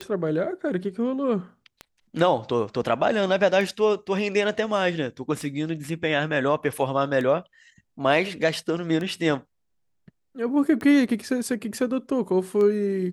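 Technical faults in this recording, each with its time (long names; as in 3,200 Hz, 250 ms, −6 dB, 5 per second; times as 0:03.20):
scratch tick 33 1/3 rpm −19 dBFS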